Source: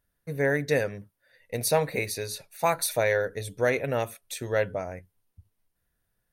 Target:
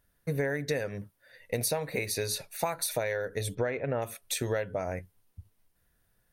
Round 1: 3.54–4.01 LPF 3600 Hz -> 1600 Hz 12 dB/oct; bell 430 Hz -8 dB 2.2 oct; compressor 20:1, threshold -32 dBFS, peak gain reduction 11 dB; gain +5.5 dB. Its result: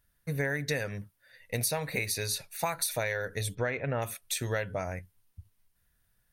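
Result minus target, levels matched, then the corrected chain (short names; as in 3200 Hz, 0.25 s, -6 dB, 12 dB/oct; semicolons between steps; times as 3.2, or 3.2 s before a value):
500 Hz band -3.0 dB
3.54–4.01 LPF 3600 Hz -> 1600 Hz 12 dB/oct; compressor 20:1, threshold -32 dBFS, peak gain reduction 16 dB; gain +5.5 dB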